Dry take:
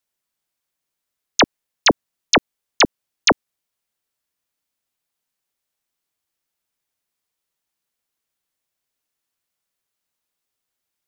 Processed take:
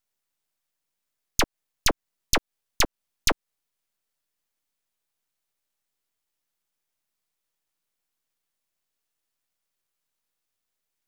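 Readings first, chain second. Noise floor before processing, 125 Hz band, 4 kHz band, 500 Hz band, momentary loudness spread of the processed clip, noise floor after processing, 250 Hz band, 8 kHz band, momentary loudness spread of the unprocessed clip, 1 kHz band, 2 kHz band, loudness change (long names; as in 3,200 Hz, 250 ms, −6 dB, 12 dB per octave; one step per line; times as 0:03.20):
−82 dBFS, −5.0 dB, −8.0 dB, −11.0 dB, 3 LU, −84 dBFS, −12.0 dB, −4.0 dB, 5 LU, −10.5 dB, −10.0 dB, −8.0 dB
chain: half-wave rectification
downward compressor 4 to 1, threshold −20 dBFS, peak gain reduction 8 dB
level +2 dB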